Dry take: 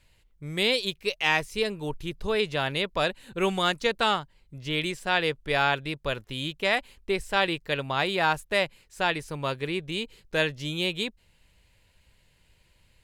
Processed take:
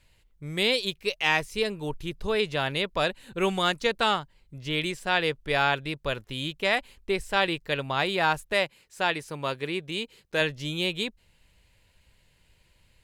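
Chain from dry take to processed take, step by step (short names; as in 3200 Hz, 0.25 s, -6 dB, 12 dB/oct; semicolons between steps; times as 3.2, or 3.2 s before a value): 8.53–10.41 HPF 160 Hz 6 dB/oct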